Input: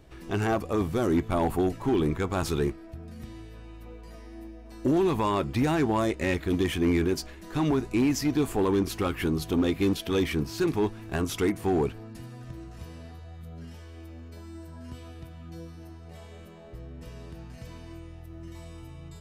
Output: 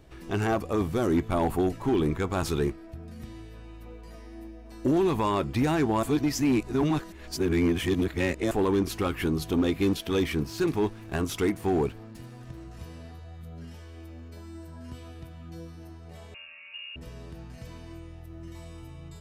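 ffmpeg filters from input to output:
-filter_complex "[0:a]asettb=1/sr,asplit=3[a][b][c];[a]atrim=end=9.994[d];[b]atrim=start=9.99:end=12.65,asetpts=PTS-STARTPTS,afade=t=in:d=0.004:c=qsin,afade=t=out:st=2.656:d=0.004:c=qsin,aeval=exprs='sgn(val(0))*max(abs(val(0))-0.00188,0)':c=same[e];[c]atrim=start=12.646[f];[d][e]acrossfade=d=0.004:c1=hsin:c2=qsin[g];[g][f]acrossfade=d=0.004:c1=qsin:c2=hsin,asettb=1/sr,asplit=3[h][i][j];[h]atrim=end=16.344[k];[i]atrim=start=16.34:end=16.96,asetpts=PTS-STARTPTS,afade=t=in:d=0.004:c=qsin,afade=t=out:st=0.616:d=0.004:c=qsin,lowpass=f=2.5k:t=q:w=0.5098,lowpass=f=2.5k:t=q:w=0.6013,lowpass=f=2.5k:t=q:w=0.9,lowpass=f=2.5k:t=q:w=2.563,afreqshift=-2900[l];[j]atrim=start=16.956[m];[k][l]acrossfade=d=0.004:c1=hsin:c2=qsin[n];[n][m]acrossfade=d=0.004:c1=qsin:c2=hsin,asplit=3[o][p][q];[o]atrim=end=6.032[r];[p]atrim=start=6.028:end=8.512,asetpts=PTS-STARTPTS,areverse[s];[q]atrim=start=8.508[t];[r][s]acrossfade=d=0.004:c1=hsin:c2=hsin[u];[u][t]acrossfade=d=0.004:c1=hsin:c2=hsin"

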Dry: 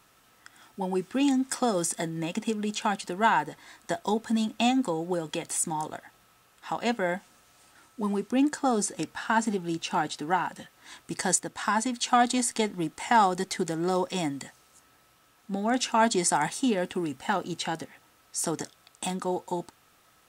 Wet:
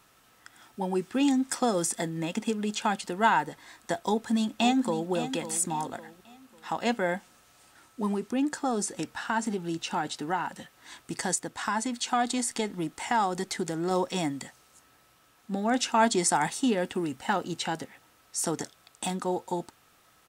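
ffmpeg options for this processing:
-filter_complex "[0:a]asplit=2[a][b];[b]afade=t=in:st=4.06:d=0.01,afade=t=out:st=5.1:d=0.01,aecho=0:1:550|1100|1650|2200:0.281838|0.0986434|0.0345252|0.0120838[c];[a][c]amix=inputs=2:normalize=0,asettb=1/sr,asplit=3[d][e][f];[d]atrim=end=8.144[g];[e]atrim=start=8.14:end=13.91,asetpts=PTS-STARTPTS,afade=t=in:d=0.004:c=qsin,afade=t=out:st=5.766:d=0.004:c=qsin,acompressor=threshold=-29dB:ratio=1.5:attack=3.2:release=140:knee=1:detection=peak[h];[f]atrim=start=13.906[i];[g][h]acrossfade=d=0.004:c1=hsin:c2=qsin[j];[j][i]acrossfade=d=0.004:c1=qsin:c2=hsin"

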